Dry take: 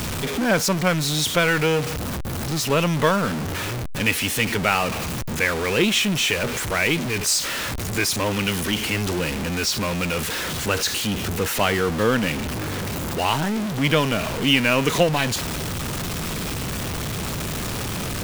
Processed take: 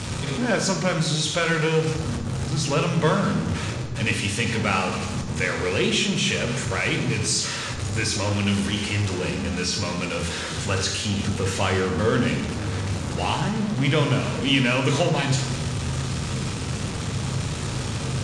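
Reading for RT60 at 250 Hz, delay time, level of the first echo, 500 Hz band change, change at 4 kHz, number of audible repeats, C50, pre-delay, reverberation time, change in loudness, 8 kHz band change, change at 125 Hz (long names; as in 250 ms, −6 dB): 1.5 s, no echo audible, no echo audible, −2.0 dB, −2.5 dB, no echo audible, 7.0 dB, 3 ms, 1.2 s, −1.5 dB, −2.5 dB, +2.5 dB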